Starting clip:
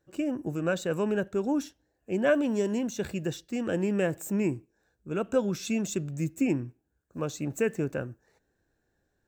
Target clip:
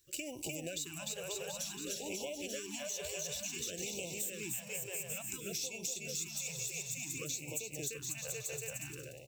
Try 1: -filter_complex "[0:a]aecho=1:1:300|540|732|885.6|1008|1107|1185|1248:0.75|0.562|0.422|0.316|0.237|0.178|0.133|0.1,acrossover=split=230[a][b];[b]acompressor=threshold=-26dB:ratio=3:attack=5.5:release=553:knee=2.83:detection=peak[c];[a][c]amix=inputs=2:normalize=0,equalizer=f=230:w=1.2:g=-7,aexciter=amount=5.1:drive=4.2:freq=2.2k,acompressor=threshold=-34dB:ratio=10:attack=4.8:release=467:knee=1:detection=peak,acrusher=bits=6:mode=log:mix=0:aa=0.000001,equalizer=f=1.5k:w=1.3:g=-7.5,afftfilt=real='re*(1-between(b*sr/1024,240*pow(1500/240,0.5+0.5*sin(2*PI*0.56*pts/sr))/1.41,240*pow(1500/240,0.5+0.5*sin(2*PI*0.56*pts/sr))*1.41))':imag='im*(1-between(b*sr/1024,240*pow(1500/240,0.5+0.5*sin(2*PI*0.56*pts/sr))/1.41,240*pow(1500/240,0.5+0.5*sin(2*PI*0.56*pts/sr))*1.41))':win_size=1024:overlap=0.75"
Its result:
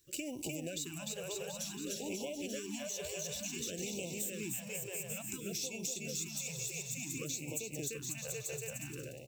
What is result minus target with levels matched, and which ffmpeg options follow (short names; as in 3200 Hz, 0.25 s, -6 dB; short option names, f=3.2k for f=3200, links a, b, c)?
250 Hz band +5.0 dB
-filter_complex "[0:a]aecho=1:1:300|540|732|885.6|1008|1107|1185|1248:0.75|0.562|0.422|0.316|0.237|0.178|0.133|0.1,acrossover=split=230[a][b];[b]acompressor=threshold=-26dB:ratio=3:attack=5.5:release=553:knee=2.83:detection=peak[c];[a][c]amix=inputs=2:normalize=0,equalizer=f=230:w=1.2:g=-16,aexciter=amount=5.1:drive=4.2:freq=2.2k,acompressor=threshold=-34dB:ratio=10:attack=4.8:release=467:knee=1:detection=peak,acrusher=bits=6:mode=log:mix=0:aa=0.000001,equalizer=f=1.5k:w=1.3:g=-7.5,afftfilt=real='re*(1-between(b*sr/1024,240*pow(1500/240,0.5+0.5*sin(2*PI*0.56*pts/sr))/1.41,240*pow(1500/240,0.5+0.5*sin(2*PI*0.56*pts/sr))*1.41))':imag='im*(1-between(b*sr/1024,240*pow(1500/240,0.5+0.5*sin(2*PI*0.56*pts/sr))/1.41,240*pow(1500/240,0.5+0.5*sin(2*PI*0.56*pts/sr))*1.41))':win_size=1024:overlap=0.75"